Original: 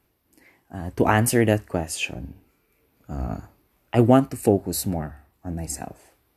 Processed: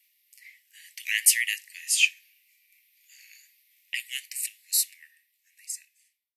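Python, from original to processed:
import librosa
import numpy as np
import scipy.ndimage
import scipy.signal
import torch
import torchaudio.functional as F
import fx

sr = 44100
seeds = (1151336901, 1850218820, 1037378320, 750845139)

y = fx.fade_out_tail(x, sr, length_s=2.05)
y = scipy.signal.sosfilt(scipy.signal.butter(16, 1900.0, 'highpass', fs=sr, output='sos'), y)
y = F.gain(torch.from_numpy(y), 7.0).numpy()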